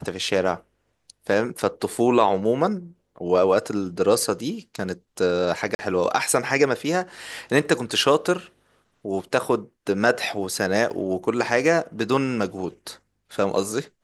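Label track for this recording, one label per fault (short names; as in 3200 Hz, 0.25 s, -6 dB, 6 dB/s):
5.750000	5.790000	gap 40 ms
10.900000	10.900000	gap 4.7 ms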